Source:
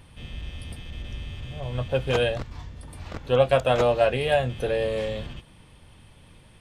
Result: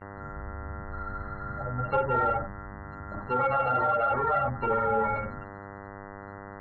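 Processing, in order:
samples sorted by size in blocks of 32 samples
four-comb reverb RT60 0.33 s, combs from 28 ms, DRR 0 dB
brickwall limiter −13 dBFS, peak gain reduction 8.5 dB
flanger 0.95 Hz, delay 9.8 ms, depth 8 ms, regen −54%
treble cut that deepens with the level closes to 2,800 Hz, closed at −25 dBFS
gate on every frequency bin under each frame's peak −15 dB strong
hum with harmonics 100 Hz, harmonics 20, −45 dBFS −4 dB per octave
0:00.95–0:01.58: healed spectral selection 890–5,300 Hz after
0:02.30–0:04.68: parametric band 510 Hz −4 dB 0.95 octaves
mid-hump overdrive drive 11 dB, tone 1,900 Hz, clips at −14.5 dBFS
high-frequency loss of the air 320 metres
noise gate with hold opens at −33 dBFS
level +3 dB

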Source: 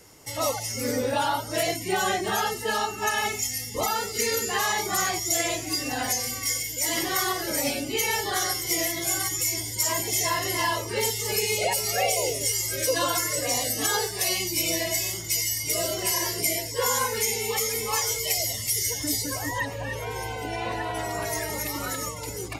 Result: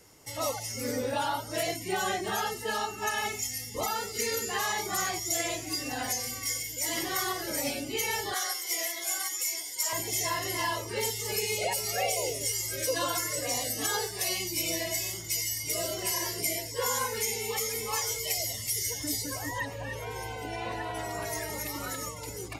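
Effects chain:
0:08.34–0:09.93: high-pass filter 610 Hz 12 dB per octave
level −5 dB

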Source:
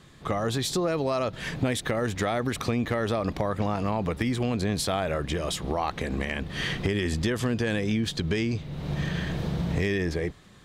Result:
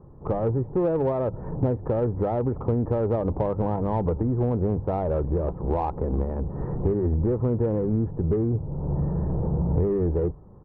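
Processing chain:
Butterworth low-pass 1,000 Hz 36 dB per octave
low-shelf EQ 200 Hz +4.5 dB
mains-hum notches 50/100/150 Hz
comb filter 2.2 ms, depth 35%
in parallel at −6 dB: soft clipping −27.5 dBFS, distortion −10 dB

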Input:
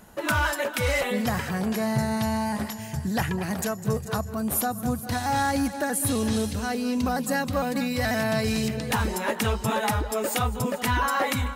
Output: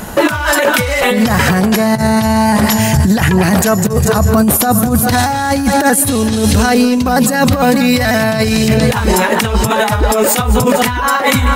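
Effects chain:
compressor whose output falls as the input rises −29 dBFS, ratio −0.5
boost into a limiter +22 dB
level −1 dB

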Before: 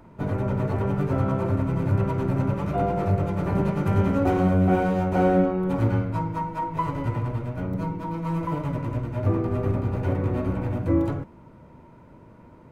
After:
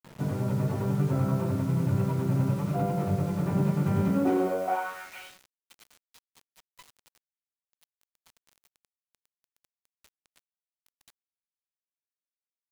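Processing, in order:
high-pass filter sweep 140 Hz → 3,800 Hz, 0:04.08–0:05.34
bit reduction 7 bits
level −6.5 dB

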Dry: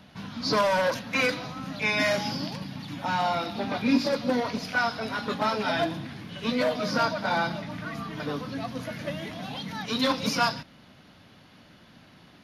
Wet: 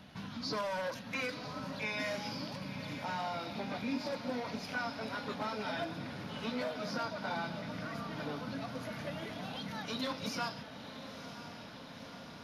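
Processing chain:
downward compressor 2 to 1, threshold −40 dBFS, peak gain reduction 12.5 dB
on a send: feedback delay with all-pass diffusion 993 ms, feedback 74%, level −11 dB
on the sum: level −2.5 dB

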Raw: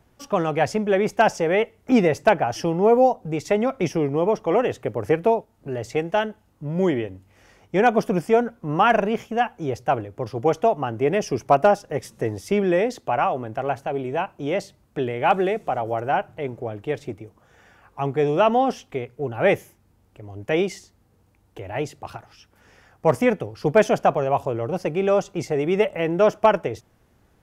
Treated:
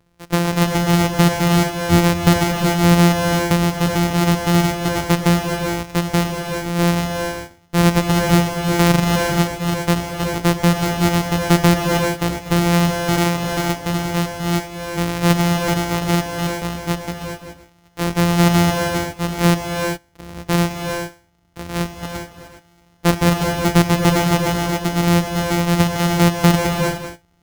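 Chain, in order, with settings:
samples sorted by size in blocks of 256 samples
reverb whose tail is shaped and stops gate 440 ms rising, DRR 4 dB
leveller curve on the samples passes 1

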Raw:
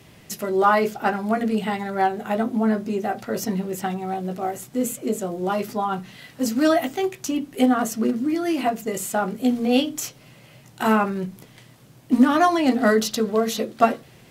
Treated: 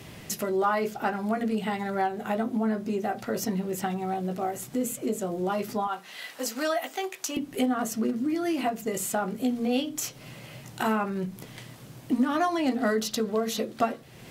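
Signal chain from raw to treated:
0:05.87–0:07.37: high-pass filter 580 Hz 12 dB per octave
downward compressor 2 to 1, threshold −37 dBFS, peak gain reduction 14.5 dB
level +4.5 dB

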